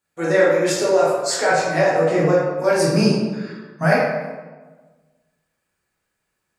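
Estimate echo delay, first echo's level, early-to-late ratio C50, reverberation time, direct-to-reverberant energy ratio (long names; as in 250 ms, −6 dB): no echo audible, no echo audible, −0.5 dB, 1.3 s, −8.0 dB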